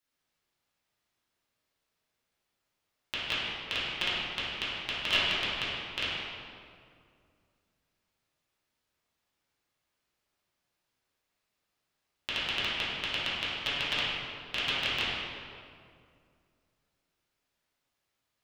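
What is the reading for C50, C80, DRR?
-3.0 dB, -0.5 dB, -10.5 dB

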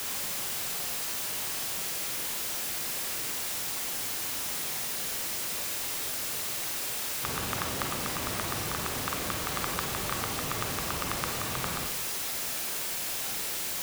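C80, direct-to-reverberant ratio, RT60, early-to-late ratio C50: 11.0 dB, 3.0 dB, 0.45 s, 6.5 dB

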